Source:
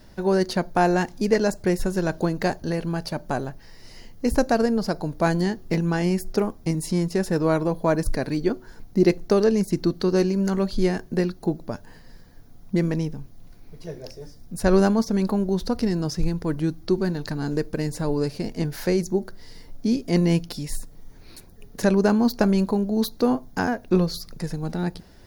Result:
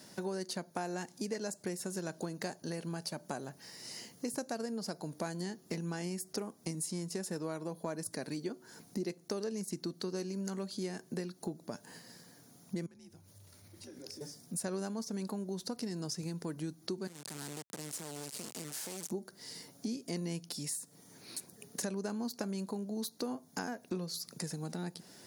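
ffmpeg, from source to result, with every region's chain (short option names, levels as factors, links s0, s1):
-filter_complex "[0:a]asettb=1/sr,asplit=3[s0][s1][s2];[s0]atrim=end=12.864[s3];[s1]atrim=start=12.86:end=14.21,asetpts=PTS-STARTPTS,afade=t=in:d=0.004:c=qsin,afade=t=out:st=1.346:d=0.004:c=qsin,acompressor=threshold=0.01:ratio=10:attack=3.2:release=140:knee=1:detection=peak,afreqshift=-110[s4];[s2]atrim=start=14.206[s5];[s3][s4]acrossfade=d=0.004:c1=hsin:c2=qsin[s6];[s6][s5]acrossfade=d=0.004:c1=qsin:c2=hsin,asettb=1/sr,asplit=3[s7][s8][s9];[s7]atrim=end=17.074[s10];[s8]atrim=start=17.07:end=19.11,asetpts=PTS-STARTPTS,afade=t=in:d=0.004:c=qsin,afade=t=out:st=2.036:d=0.004:c=qsin,highpass=f=87:w=0.5412,highpass=f=87:w=1.3066,acompressor=threshold=0.02:ratio=6:attack=3.2:release=140:knee=1:detection=peak,acrusher=bits=4:dc=4:mix=0:aa=0.000001[s11];[s9]atrim=start=19.106[s12];[s10][s11]acrossfade=d=0.004:c1=hsin:c2=qsin[s13];[s13][s12]acrossfade=d=0.004:c1=qsin:c2=hsin,highpass=f=140:w=0.5412,highpass=f=140:w=1.3066,equalizer=f=8500:t=o:w=1.4:g=14,acompressor=threshold=0.02:ratio=4,volume=0.668"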